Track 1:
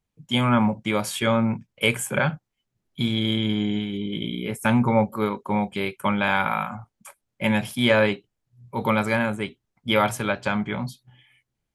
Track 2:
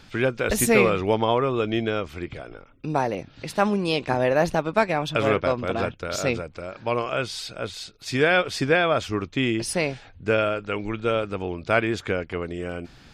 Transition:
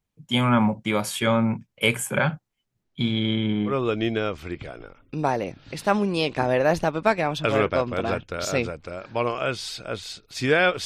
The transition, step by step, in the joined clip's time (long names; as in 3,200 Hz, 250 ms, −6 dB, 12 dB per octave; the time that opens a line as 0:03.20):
track 1
0:02.83–0:03.75: low-pass filter 6,900 Hz → 1,700 Hz
0:03.70: continue with track 2 from 0:01.41, crossfade 0.10 s